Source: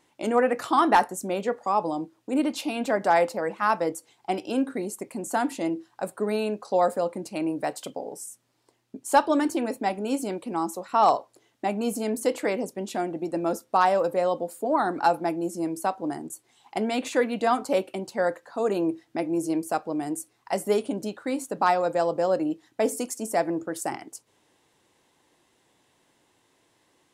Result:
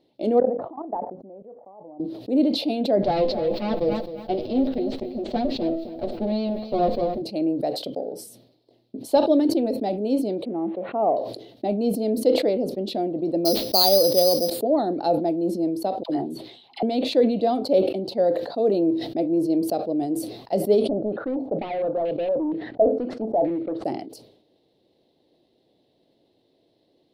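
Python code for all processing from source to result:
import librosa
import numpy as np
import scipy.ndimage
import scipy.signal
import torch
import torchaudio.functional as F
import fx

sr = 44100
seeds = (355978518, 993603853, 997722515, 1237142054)

y = fx.chain(x, sr, fx.level_steps(step_db=19),
    fx.ladder_lowpass(hz=1100.0, resonance_pct=55), at=(0.4, 2.0))
y = fx.chain(y, sr, fx.lower_of_two(delay_ms=8.3),
    fx.lowpass(hz=5800.0, slope=24),
    fx.echo_crushed(ms=264, feedback_pct=35, bits=8, wet_db=-12.0), at=(3.03, 7.22))
y = fx.chain(y, sr, fx.crossing_spikes(level_db=-21.0),
    fx.bessel_lowpass(hz=1200.0, order=8),
    fx.low_shelf(hz=82.0, db=-10.0), at=(10.45, 11.17))
y = fx.chain(y, sr, fx.law_mismatch(coded='mu'),
    fx.resample_bad(factor=8, down='none', up='zero_stuff'), at=(13.45, 14.5))
y = fx.chain(y, sr, fx.band_shelf(hz=1900.0, db=8.0, octaves=2.5),
    fx.dispersion(late='lows', ms=69.0, hz=970.0), at=(16.03, 16.83))
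y = fx.chain(y, sr, fx.overload_stage(gain_db=28.5),
    fx.quant_companded(bits=6),
    fx.filter_held_lowpass(hz=4.3, low_hz=680.0, high_hz=2600.0), at=(20.89, 23.85))
y = fx.curve_eq(y, sr, hz=(100.0, 240.0, 650.0, 990.0, 1500.0, 2700.0, 4200.0, 7000.0, 14000.0), db=(0, 5, 6, -14, -17, -8, 4, -24, -10))
y = fx.sustainer(y, sr, db_per_s=73.0)
y = y * 10.0 ** (-1.0 / 20.0)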